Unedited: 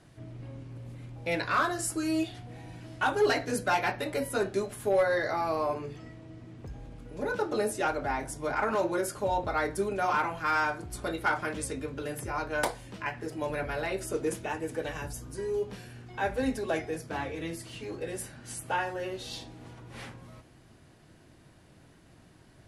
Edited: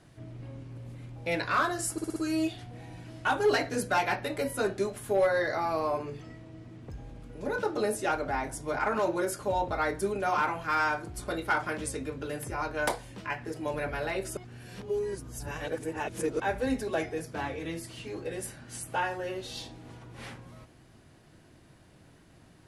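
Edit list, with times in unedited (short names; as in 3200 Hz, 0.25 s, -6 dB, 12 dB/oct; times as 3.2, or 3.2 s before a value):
1.92 stutter 0.06 s, 5 plays
14.13–16.16 reverse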